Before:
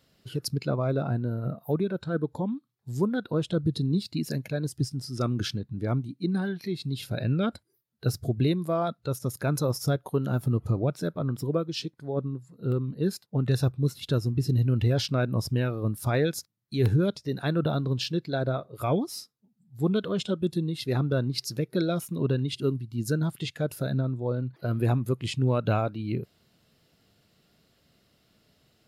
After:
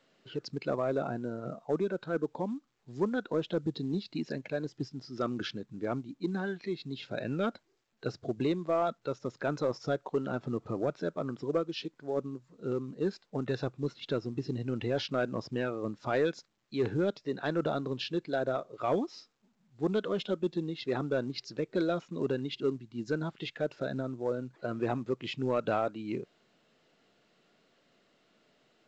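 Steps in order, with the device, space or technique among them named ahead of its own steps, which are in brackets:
telephone (band-pass filter 280–3,000 Hz; soft clipping −18.5 dBFS, distortion −21 dB; mu-law 128 kbit/s 16,000 Hz)

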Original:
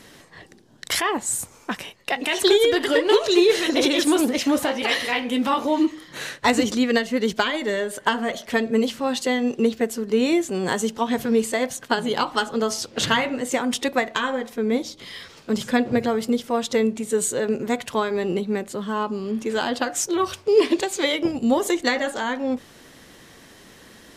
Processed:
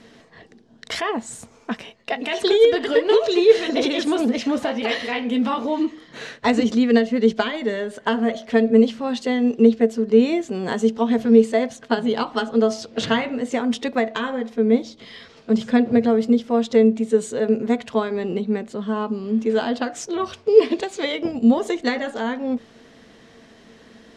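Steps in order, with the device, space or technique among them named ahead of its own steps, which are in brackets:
inside a cardboard box (low-pass filter 5,400 Hz 12 dB per octave; hollow resonant body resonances 230/450/660 Hz, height 11 dB, ringing for 95 ms)
level −3 dB

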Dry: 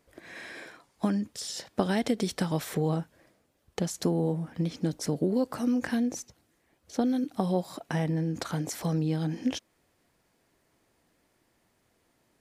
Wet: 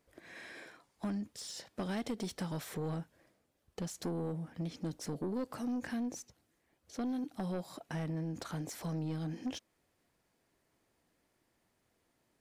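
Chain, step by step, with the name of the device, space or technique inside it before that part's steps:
saturation between pre-emphasis and de-emphasis (high-shelf EQ 5,000 Hz +11.5 dB; soft clipping −24.5 dBFS, distortion −12 dB; high-shelf EQ 5,000 Hz −11.5 dB)
level −6.5 dB

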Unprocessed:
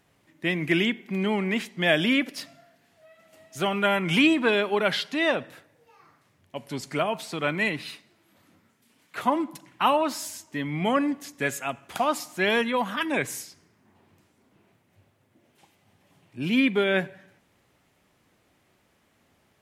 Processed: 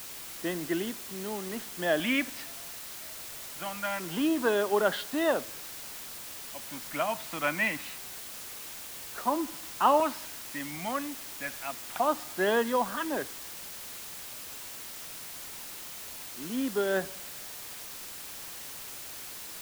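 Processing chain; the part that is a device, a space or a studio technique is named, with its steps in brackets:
shortwave radio (band-pass filter 260–2,600 Hz; amplitude tremolo 0.4 Hz, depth 62%; auto-filter notch square 0.25 Hz 410–2,300 Hz; white noise bed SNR 9 dB)

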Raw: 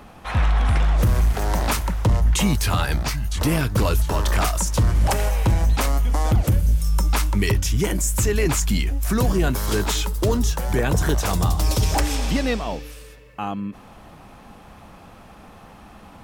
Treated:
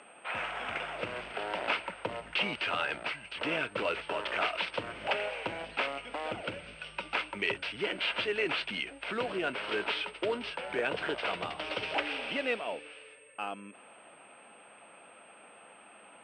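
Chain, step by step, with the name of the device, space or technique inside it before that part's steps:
toy sound module (linearly interpolated sample-rate reduction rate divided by 4×; switching amplifier with a slow clock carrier 8,500 Hz; loudspeaker in its box 670–4,100 Hz, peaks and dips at 800 Hz −8 dB, 1,100 Hz −10 dB, 1,800 Hz −6 dB, 2,700 Hz +4 dB, 3,900 Hz −7 dB)

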